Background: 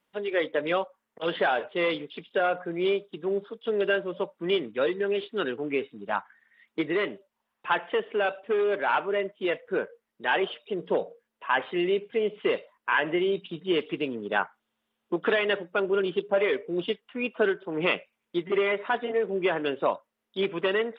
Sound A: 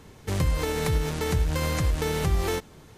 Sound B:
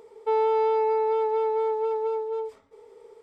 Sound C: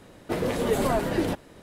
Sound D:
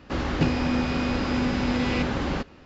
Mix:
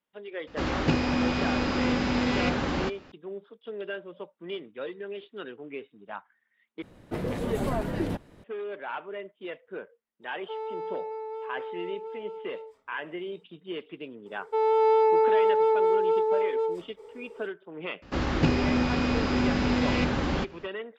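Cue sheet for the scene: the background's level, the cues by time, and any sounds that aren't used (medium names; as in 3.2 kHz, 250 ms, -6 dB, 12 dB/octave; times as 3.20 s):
background -10.5 dB
0.47 s: add D + bass shelf 150 Hz -5.5 dB
6.82 s: replace with C -6 dB + tone controls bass +6 dB, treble -5 dB
10.22 s: add B -12.5 dB
14.26 s: add B -3 dB + level rider gain up to 5.5 dB
18.02 s: add D -0.5 dB
not used: A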